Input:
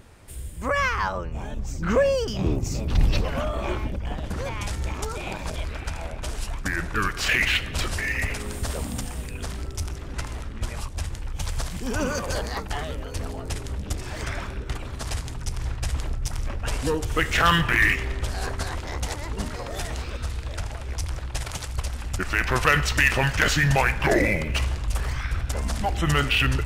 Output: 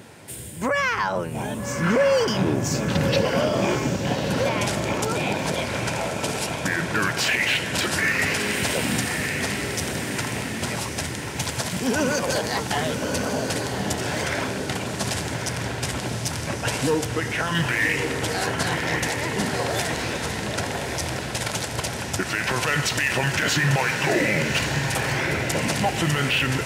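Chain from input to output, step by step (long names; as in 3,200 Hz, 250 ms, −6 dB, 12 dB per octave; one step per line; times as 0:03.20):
high-pass filter 120 Hz 24 dB per octave
notch filter 1,200 Hz, Q 7.1
in parallel at −1 dB: downward compressor, threshold −31 dBFS, peak gain reduction 15.5 dB
on the sum: brickwall limiter −16 dBFS, peak gain reduction 11 dB
0:17.06–0:17.55: high-frequency loss of the air 370 metres
on a send: feedback delay with all-pass diffusion 1,178 ms, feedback 47%, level −5 dB
on the sum: level +3 dB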